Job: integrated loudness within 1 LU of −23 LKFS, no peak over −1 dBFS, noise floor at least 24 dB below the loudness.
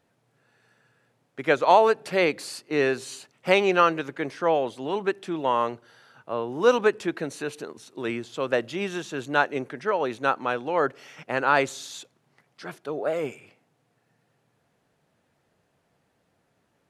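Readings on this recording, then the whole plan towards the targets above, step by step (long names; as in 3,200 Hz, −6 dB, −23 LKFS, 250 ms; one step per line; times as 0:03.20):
integrated loudness −25.0 LKFS; sample peak −3.5 dBFS; target loudness −23.0 LKFS
→ level +2 dB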